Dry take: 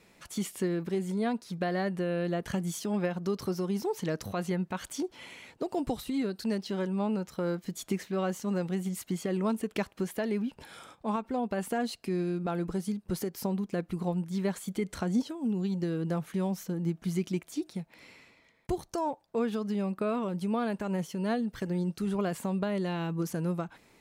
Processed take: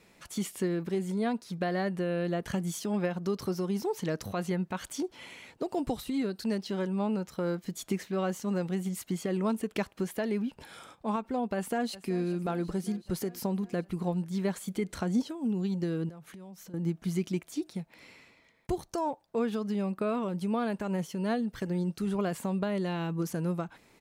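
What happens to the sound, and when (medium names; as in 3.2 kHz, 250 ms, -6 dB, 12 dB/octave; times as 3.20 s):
11.55–12.25 s: echo throw 380 ms, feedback 70%, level -16.5 dB
16.09–16.74 s: compression 8:1, threshold -45 dBFS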